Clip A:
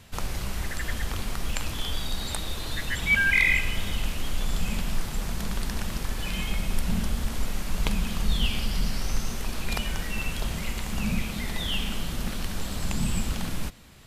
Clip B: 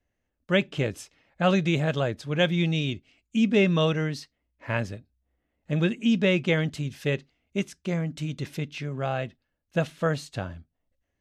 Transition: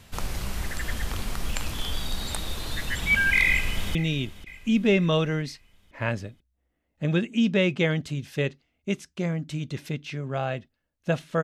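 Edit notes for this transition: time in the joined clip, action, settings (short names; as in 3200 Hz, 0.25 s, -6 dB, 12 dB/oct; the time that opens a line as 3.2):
clip A
3.48–3.95 echo throw 0.49 s, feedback 55%, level -16 dB
3.95 switch to clip B from 2.63 s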